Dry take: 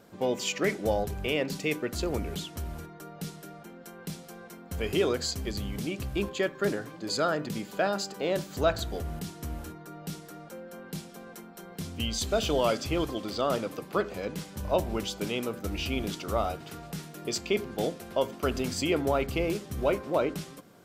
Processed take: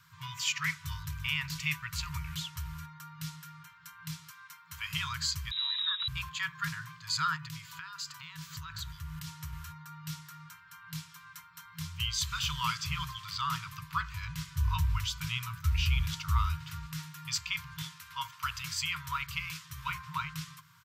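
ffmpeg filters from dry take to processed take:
ffmpeg -i in.wav -filter_complex "[0:a]asplit=2[link_01][link_02];[link_02]afade=type=in:start_time=0.73:duration=0.01,afade=type=out:start_time=1.41:duration=0.01,aecho=0:1:340|680|1020:0.223872|0.0783552|0.0274243[link_03];[link_01][link_03]amix=inputs=2:normalize=0,asettb=1/sr,asplit=3[link_04][link_05][link_06];[link_04]atrim=end=4.304[link_07];[link_05]atrim=start=4.3:end=4.94,asetpts=PTS-STARTPTS,afade=type=in:duration=0.004:curve=qsin,afade=type=out:start_time=0.636:duration=0.004:curve=qsin,highpass=frequency=350:poles=1[link_08];[link_06]atrim=start=4.936[link_09];[link_07][link_08]acrossfade=duration=0.004:curve1=hsin:curve2=qsin[link_10];[link_10][link_09]acrossfade=duration=0.004:curve1=qsin:curve2=hsin,asettb=1/sr,asplit=3[link_11][link_12][link_13];[link_11]atrim=end=5.514[link_14];[link_12]atrim=start=5.51:end=6.08,asetpts=PTS-STARTPTS,afade=type=in:duration=0.004:curve=qsin,afade=type=out:start_time=0.566:duration=0.004:curve=qsin,lowpass=frequency=3400:width_type=q:width=0.5098,lowpass=frequency=3400:width_type=q:width=0.6013,lowpass=frequency=3400:width_type=q:width=0.9,lowpass=frequency=3400:width_type=q:width=2.563,afreqshift=-4000[link_15];[link_13]atrim=start=6.076[link_16];[link_14][link_15]acrossfade=duration=0.004:curve1=hsin:curve2=qsin[link_17];[link_17][link_16]acrossfade=duration=0.004:curve1=qsin:curve2=hsin,asettb=1/sr,asplit=3[link_18][link_19][link_20];[link_18]atrim=end=7.364[link_21];[link_19]atrim=start=7.36:end=9.53,asetpts=PTS-STARTPTS,afade=type=in:duration=0.004:curve=qsin,afade=type=out:start_time=2.166:duration=0.004:curve=qsin,acompressor=threshold=-33dB:ratio=8:attack=3.2:release=140:knee=1:detection=peak[link_22];[link_20]atrim=start=9.526[link_23];[link_21][link_22]acrossfade=duration=0.004:curve1=hsin:curve2=qsin[link_24];[link_24][link_23]acrossfade=duration=0.004:curve1=qsin:curve2=hsin,asplit=3[link_25][link_26][link_27];[link_25]afade=type=out:start_time=13.67:duration=0.02[link_28];[link_26]asubboost=boost=7:cutoff=86,afade=type=in:start_time=13.67:duration=0.02,afade=type=out:start_time=16.86:duration=0.02[link_29];[link_27]afade=type=in:start_time=16.86:duration=0.02[link_30];[link_28][link_29][link_30]amix=inputs=3:normalize=0,asettb=1/sr,asplit=3[link_31][link_32][link_33];[link_31]atrim=end=17.824[link_34];[link_32]atrim=start=17.82:end=19.9,asetpts=PTS-STARTPTS,afade=type=in:duration=0.004:curve=qsin,afade=type=out:start_time=2.076:duration=0.004:curve=qsin,lowshelf=frequency=360:gain=-8[link_35];[link_33]atrim=start=19.896[link_36];[link_34][link_35]acrossfade=duration=0.004:curve1=hsin:curve2=qsin[link_37];[link_37][link_36]acrossfade=duration=0.004:curve1=qsin:curve2=hsin,highpass=79,equalizer=frequency=9600:width=2.1:gain=-6,afftfilt=real='re*(1-between(b*sr/4096,170,920))':imag='im*(1-between(b*sr/4096,170,920))':win_size=4096:overlap=0.75,volume=1dB" out.wav

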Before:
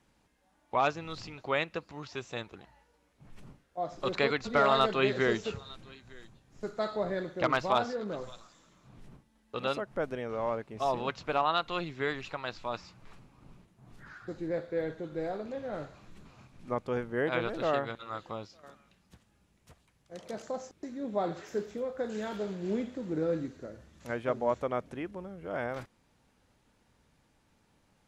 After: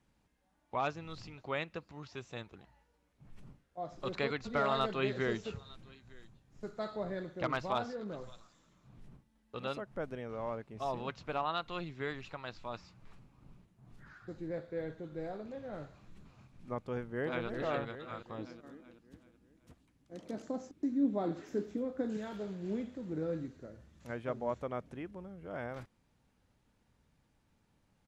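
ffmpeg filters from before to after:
ffmpeg -i in.wav -filter_complex "[0:a]asplit=2[link_01][link_02];[link_02]afade=type=in:start_time=16.78:duration=0.01,afade=type=out:start_time=17.46:duration=0.01,aecho=0:1:380|760|1140|1520|1900|2280:0.562341|0.253054|0.113874|0.0512434|0.0230595|0.0103768[link_03];[link_01][link_03]amix=inputs=2:normalize=0,asettb=1/sr,asplit=3[link_04][link_05][link_06];[link_04]atrim=end=18.384[link_07];[link_05]atrim=start=18.38:end=22.17,asetpts=PTS-STARTPTS,afade=type=in:duration=0.004:curve=qsin,afade=type=out:start_time=3.786:duration=0.004:curve=qsin,equalizer=frequency=280:width=2.4:gain=14.5[link_08];[link_06]atrim=start=22.166[link_09];[link_07][link_08]acrossfade=duration=0.004:curve1=hsin:curve2=qsin[link_10];[link_10][link_09]acrossfade=duration=0.004:curve1=qsin:curve2=hsin,bass=frequency=250:gain=5,treble=frequency=4000:gain=-1,volume=-7dB" out.wav

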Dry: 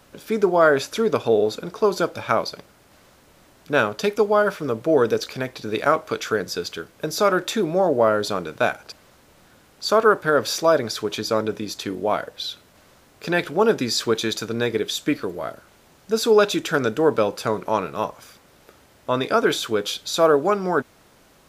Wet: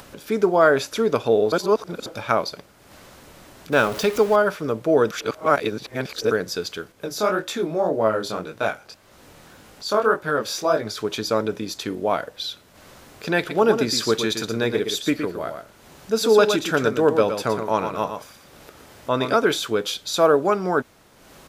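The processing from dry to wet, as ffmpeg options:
ffmpeg -i in.wav -filter_complex "[0:a]asettb=1/sr,asplit=3[link_01][link_02][link_03];[link_01]atrim=end=3.724[link_04];[link_02]atrim=start=3.72:end=4.36,asetpts=PTS-STARTPTS,afade=type=in:duration=0.004:curve=qsin,afade=type=out:start_time=0.636:duration=0.004:curve=qsin,aeval=exprs='val(0)+0.5*0.0376*sgn(val(0))':channel_layout=same[link_05];[link_03]atrim=start=4.356[link_06];[link_04][link_05]acrossfade=duration=0.004:curve1=hsin:curve2=qsin[link_07];[link_07][link_06]acrossfade=duration=0.004:curve1=qsin:curve2=hsin,asettb=1/sr,asplit=3[link_08][link_09][link_10];[link_08]atrim=end=6.924[link_11];[link_09]atrim=start=6.92:end=10.98,asetpts=PTS-STARTPTS,afade=type=in:duration=0.004:curve=qsin,afade=type=out:start_time=4.056:duration=0.004:curve=qsin,flanger=delay=18:depth=6.5:speed=1.8[link_12];[link_10]atrim=start=10.976[link_13];[link_11][link_12]acrossfade=duration=0.004:curve1=hsin:curve2=qsin[link_14];[link_14][link_13]acrossfade=duration=0.004:curve1=qsin:curve2=hsin,asplit=3[link_15][link_16][link_17];[link_15]afade=type=out:start_time=13.49:duration=0.02[link_18];[link_16]aecho=1:1:117:0.422,afade=type=in:start_time=13.49:duration=0.02,afade=type=out:start_time=19.36:duration=0.02[link_19];[link_17]afade=type=in:start_time=19.36:duration=0.02[link_20];[link_18][link_19][link_20]amix=inputs=3:normalize=0,asplit=5[link_21][link_22][link_23][link_24][link_25];[link_21]atrim=end=1.522[link_26];[link_22]atrim=start=1.518:end=2.062,asetpts=PTS-STARTPTS,areverse[link_27];[link_23]atrim=start=2.058:end=5.112[link_28];[link_24]atrim=start=5.108:end=6.312,asetpts=PTS-STARTPTS,areverse[link_29];[link_25]atrim=start=6.308[link_30];[link_26][link_27]acrossfade=duration=0.004:curve1=hsin:curve2=hsin[link_31];[link_31][link_28]acrossfade=duration=0.004:curve1=hsin:curve2=hsin[link_32];[link_32][link_29]acrossfade=duration=0.004:curve1=hsin:curve2=hsin[link_33];[link_33][link_30]acrossfade=duration=0.004:curve1=hsin:curve2=hsin,acompressor=mode=upward:threshold=-37dB:ratio=2.5" out.wav

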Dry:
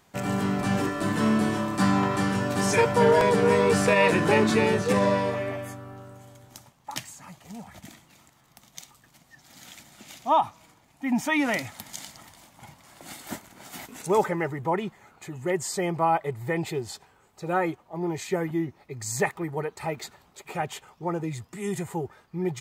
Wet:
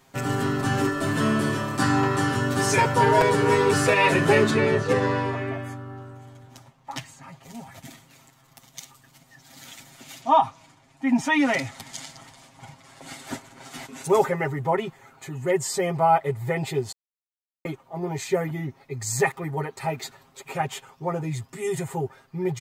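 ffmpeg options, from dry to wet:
ffmpeg -i in.wav -filter_complex "[0:a]asettb=1/sr,asplit=3[link_01][link_02][link_03];[link_01]atrim=end=4.504[link_04];[link_02]atrim=start=4.5:end=7.43,asetpts=PTS-STARTPTS,afade=type=in:duration=0.004:curve=qsin,afade=type=out:start_time=2.926:duration=0.004:curve=qsin,lowpass=frequency=3000:poles=1[link_05];[link_03]atrim=start=7.426[link_06];[link_04][link_05]acrossfade=duration=0.004:curve1=hsin:curve2=qsin[link_07];[link_07][link_06]acrossfade=duration=0.004:curve1=qsin:curve2=hsin,asettb=1/sr,asplit=3[link_08][link_09][link_10];[link_08]atrim=end=10.214[link_11];[link_09]atrim=start=10.21:end=14.02,asetpts=PTS-STARTPTS,afade=type=in:duration=0.004:curve=qsin,afade=type=out:start_time=3.806:duration=0.004:curve=qsin,lowpass=8500[link_12];[link_10]atrim=start=14.016[link_13];[link_11][link_12]acrossfade=duration=0.004:curve1=hsin:curve2=qsin[link_14];[link_14][link_13]acrossfade=duration=0.004:curve1=qsin:curve2=hsin,asplit=3[link_15][link_16][link_17];[link_15]atrim=end=16.92,asetpts=PTS-STARTPTS,afade=type=out:start_time=16.916:duration=0.004:curve=hsin[link_18];[link_16]atrim=start=16.92:end=17.65,asetpts=PTS-STARTPTS,volume=0[link_19];[link_17]atrim=start=17.65,asetpts=PTS-STARTPTS,afade=type=in:duration=0.004:curve=hsin[link_20];[link_18][link_19][link_20]concat=n=3:v=0:a=1,aecho=1:1:7.5:0.95" out.wav

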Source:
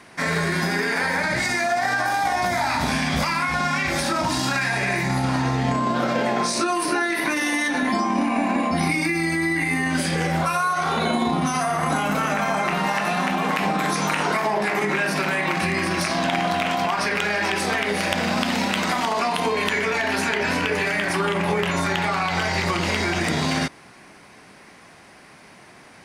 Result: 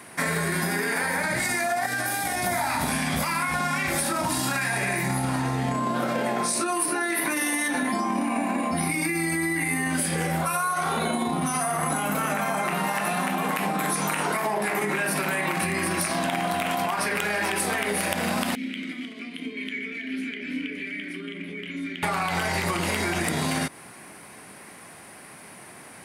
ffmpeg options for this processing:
ffmpeg -i in.wav -filter_complex "[0:a]asettb=1/sr,asplit=3[link_01][link_02][link_03];[link_01]atrim=end=1.864[link_04];[link_02]atrim=start=1.86:end=2.47,asetpts=PTS-STARTPTS,afade=type=in:duration=0.004:curve=qsin,afade=type=out:start_time=0.606:duration=0.004:curve=qsin,equalizer=frequency=950:width=1.4:gain=-12.5[link_05];[link_03]atrim=start=2.466[link_06];[link_04][link_05]acrossfade=duration=0.004:curve1=hsin:curve2=qsin[link_07];[link_07][link_06]acrossfade=duration=0.004:curve1=qsin:curve2=hsin,asettb=1/sr,asplit=3[link_08][link_09][link_10];[link_08]atrim=end=18.554[link_11];[link_09]atrim=start=18.55:end=22.03,asetpts=PTS-STARTPTS,afade=type=in:duration=0.004:curve=qsin,afade=type=out:start_time=3.476:duration=0.004:curve=qsin,asplit=3[link_12][link_13][link_14];[link_12]bandpass=frequency=270:width_type=q:width=8,volume=0dB[link_15];[link_13]bandpass=frequency=2290:width_type=q:width=8,volume=-6dB[link_16];[link_14]bandpass=frequency=3010:width_type=q:width=8,volume=-9dB[link_17];[link_15][link_16][link_17]amix=inputs=3:normalize=0[link_18];[link_10]atrim=start=22.026[link_19];[link_11][link_18]acrossfade=duration=0.004:curve1=hsin:curve2=qsin[link_20];[link_20][link_19]acrossfade=duration=0.004:curve1=qsin:curve2=hsin,highpass=72,highshelf=frequency=7800:width_type=q:width=1.5:gain=10.5,acompressor=threshold=-24dB:ratio=6,volume=1.5dB" out.wav

